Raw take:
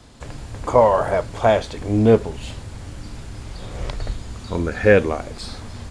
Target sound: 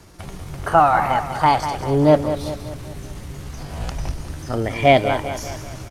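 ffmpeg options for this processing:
ffmpeg -i in.wav -af "asetrate=58866,aresample=44100,atempo=0.749154,aecho=1:1:196|392|588|784|980:0.316|0.155|0.0759|0.0372|0.0182" out.wav

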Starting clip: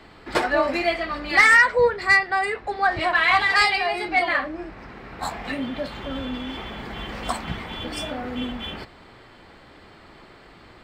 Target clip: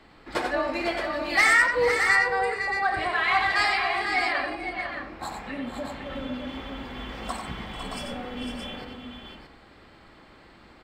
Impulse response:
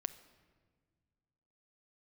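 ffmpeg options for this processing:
-filter_complex "[0:a]asettb=1/sr,asplit=3[link_01][link_02][link_03];[link_01]atrim=end=1.034[link_04];[link_02]atrim=start=1.03:end=1.53,asetpts=PTS-STARTPTS,afade=type=in:duration=0.004:curve=qsin,afade=type=out:start_time=0.496:duration=0.004:curve=qsin,highshelf=frequency=6100:gain=10.5[link_05];[link_03]atrim=start=1.526[link_06];[link_04][link_05]acrossfade=duration=0.004:curve1=hsin:curve2=qsin[link_07];[link_07][link_06]acrossfade=duration=0.004:curve1=qsin:curve2=hsin,asettb=1/sr,asplit=3[link_08][link_09][link_10];[link_08]atrim=end=5.344[link_11];[link_09]atrim=start=5.34:end=6.06,asetpts=PTS-STARTPTS,afade=type=in:duration=0.004:curve=qsin,afade=type=out:start_time=0.716:duration=0.004:curve=qsin,acrossover=split=3300[link_12][link_13];[link_13]acompressor=threshold=-51dB:ratio=4:attack=1:release=60[link_14];[link_12][link_14]amix=inputs=2:normalize=0[link_15];[link_10]atrim=start=6.056[link_16];[link_11][link_15]acrossfade=duration=0.004:curve1=hsin:curve2=qsin[link_17];[link_17][link_16]acrossfade=duration=0.004:curve1=qsin:curve2=hsin,asplit=3[link_18][link_19][link_20];[link_18]afade=type=out:start_time=7.72:duration=0.02[link_21];[link_19]afreqshift=-55,afade=type=in:start_time=7.72:duration=0.02,afade=type=out:start_time=8.14:duration=0.02[link_22];[link_20]afade=type=in:start_time=8.14:duration=0.02[link_23];[link_21][link_22][link_23]amix=inputs=3:normalize=0,aecho=1:1:91|445|504|623:0.501|0.158|0.398|0.447[link_24];[1:a]atrim=start_sample=2205,asetrate=79380,aresample=44100[link_25];[link_24][link_25]afir=irnorm=-1:irlink=0"

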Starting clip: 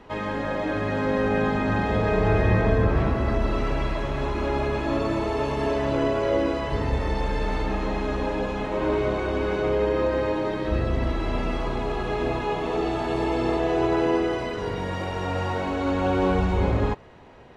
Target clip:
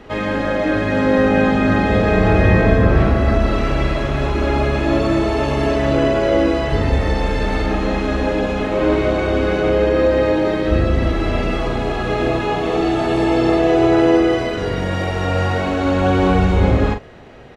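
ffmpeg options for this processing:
ffmpeg -i in.wav -filter_complex "[0:a]equalizer=frequency=960:width=5.8:gain=-9.5,asplit=2[link_01][link_02];[link_02]adelay=42,volume=-8dB[link_03];[link_01][link_03]amix=inputs=2:normalize=0,volume=8dB" out.wav

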